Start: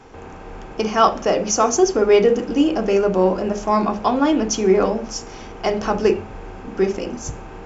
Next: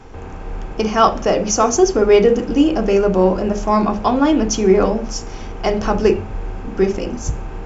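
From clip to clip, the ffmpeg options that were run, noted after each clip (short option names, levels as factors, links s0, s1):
-af "lowshelf=f=110:g=11.5,volume=1.19"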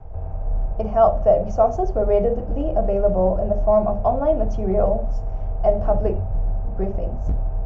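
-filter_complex "[0:a]acrossover=split=140[s0][s1];[s0]asoftclip=type=hard:threshold=0.0708[s2];[s1]bandpass=f=640:t=q:w=7.7:csg=0[s3];[s2][s3]amix=inputs=2:normalize=0,volume=2"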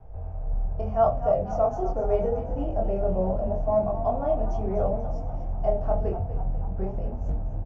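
-filter_complex "[0:a]flanger=delay=20:depth=7:speed=0.8,asplit=7[s0][s1][s2][s3][s4][s5][s6];[s1]adelay=244,afreqshift=45,volume=0.251[s7];[s2]adelay=488,afreqshift=90,volume=0.141[s8];[s3]adelay=732,afreqshift=135,volume=0.0785[s9];[s4]adelay=976,afreqshift=180,volume=0.0442[s10];[s5]adelay=1220,afreqshift=225,volume=0.0248[s11];[s6]adelay=1464,afreqshift=270,volume=0.0138[s12];[s0][s7][s8][s9][s10][s11][s12]amix=inputs=7:normalize=0,volume=0.631"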